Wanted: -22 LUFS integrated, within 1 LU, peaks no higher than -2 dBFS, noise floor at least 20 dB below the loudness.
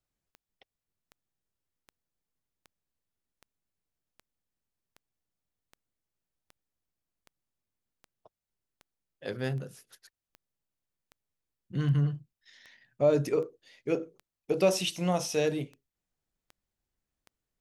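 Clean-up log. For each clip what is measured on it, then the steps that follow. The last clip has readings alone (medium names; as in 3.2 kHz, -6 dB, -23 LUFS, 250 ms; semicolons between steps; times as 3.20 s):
clicks found 23; loudness -30.0 LUFS; peak level -13.0 dBFS; loudness target -22.0 LUFS
-> de-click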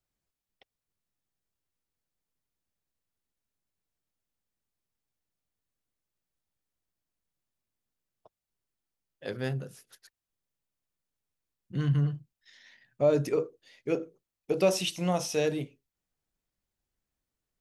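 clicks found 0; loudness -30.0 LUFS; peak level -13.0 dBFS; loudness target -22.0 LUFS
-> trim +8 dB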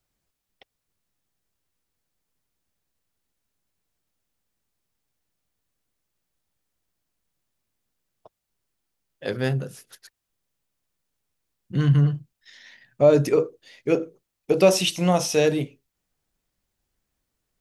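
loudness -22.0 LUFS; peak level -5.0 dBFS; noise floor -82 dBFS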